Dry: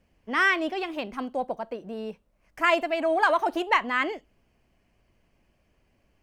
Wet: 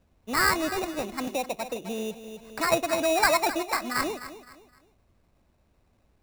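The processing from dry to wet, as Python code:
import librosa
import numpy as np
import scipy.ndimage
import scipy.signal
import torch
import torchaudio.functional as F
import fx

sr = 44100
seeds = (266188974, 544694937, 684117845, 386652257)

y = fx.fixed_phaser(x, sr, hz=660.0, stages=8, at=(3.55, 3.95), fade=0.02)
y = fx.peak_eq(y, sr, hz=78.0, db=5.0, octaves=0.77)
y = fx.notch(y, sr, hz=1800.0, q=8.5)
y = fx.sample_hold(y, sr, seeds[0], rate_hz=3200.0, jitter_pct=0)
y = fx.echo_feedback(y, sr, ms=258, feedback_pct=32, wet_db=-13.5)
y = fx.band_squash(y, sr, depth_pct=70, at=(1.27, 2.72))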